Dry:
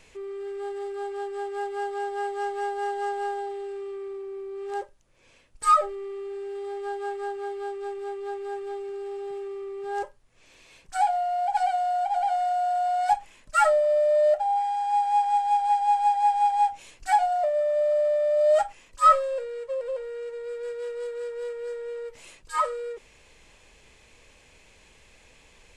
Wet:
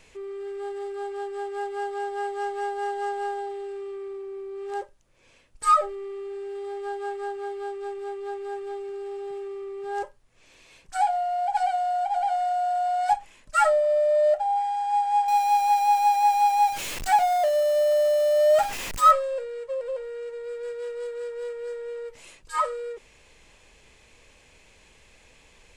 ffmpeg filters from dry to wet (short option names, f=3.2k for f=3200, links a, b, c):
-filter_complex "[0:a]asettb=1/sr,asplit=3[a][b][c];[a]atrim=end=15.284[d];[b]atrim=start=15.28:end=19.11,asetpts=PTS-STARTPTS,afade=t=in:d=0.004:c=qsin,afade=t=out:st=3.826:d=0.004:c=qsin,aeval=exprs='val(0)+0.5*0.0422*sgn(val(0))':c=same[e];[c]atrim=start=19.106[f];[d][e]acrossfade=d=0.004:c1=hsin:c2=qsin[g];[g][f]acrossfade=d=0.004:c1=qsin:c2=hsin"